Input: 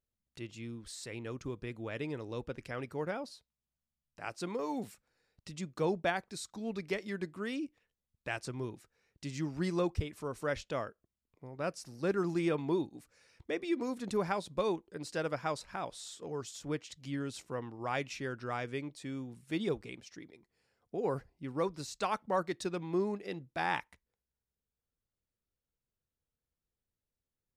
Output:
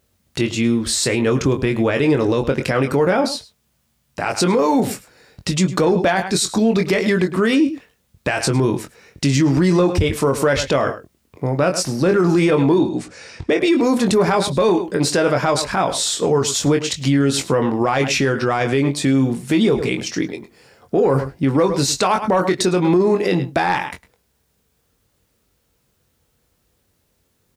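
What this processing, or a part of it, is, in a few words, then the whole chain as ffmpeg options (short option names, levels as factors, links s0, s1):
mastering chain: -filter_complex "[0:a]asettb=1/sr,asplit=3[s0][s1][s2];[s0]atrim=end=12.784[s3];[s1]atrim=start=12.78:end=13.5,asetpts=PTS-STARTPTS,afade=t=in:d=0.004:c=qsin,afade=t=out:st=0.716:d=0.004:c=qsin,lowpass=f=8500:w=0.5412,lowpass=f=8500:w=1.3066[s4];[s2]atrim=start=13.496[s5];[s3][s4]acrossfade=d=0.004:c1=hsin:c2=qsin[s6];[s6][s5]acrossfade=d=0.004:c1=qsin:c2=hsin,highpass=47,equalizer=f=410:t=o:w=2.4:g=2,asplit=2[s7][s8];[s8]adelay=22,volume=0.447[s9];[s7][s9]amix=inputs=2:normalize=0,asplit=2[s10][s11];[s11]adelay=105,volume=0.126,highshelf=f=4000:g=-2.36[s12];[s10][s12]amix=inputs=2:normalize=0,acompressor=threshold=0.0158:ratio=1.5,asoftclip=type=tanh:threshold=0.075,asoftclip=type=hard:threshold=0.0596,alimiter=level_in=44.7:limit=0.891:release=50:level=0:latency=1,volume=0.422"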